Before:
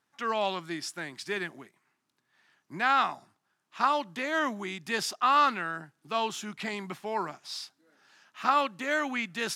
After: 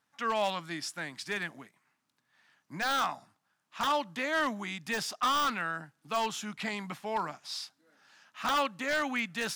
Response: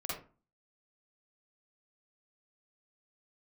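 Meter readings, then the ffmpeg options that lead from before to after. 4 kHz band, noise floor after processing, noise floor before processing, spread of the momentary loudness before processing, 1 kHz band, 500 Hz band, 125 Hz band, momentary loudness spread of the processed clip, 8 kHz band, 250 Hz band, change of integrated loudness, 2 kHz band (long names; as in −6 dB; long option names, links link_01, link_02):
+0.5 dB, −79 dBFS, −79 dBFS, 14 LU, −4.0 dB, −2.0 dB, 0.0 dB, 10 LU, 0.0 dB, −1.5 dB, −2.5 dB, −1.5 dB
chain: -af "aeval=exprs='0.0891*(abs(mod(val(0)/0.0891+3,4)-2)-1)':channel_layout=same,equalizer=frequency=370:width=6.9:gain=-13.5,deesser=0.7"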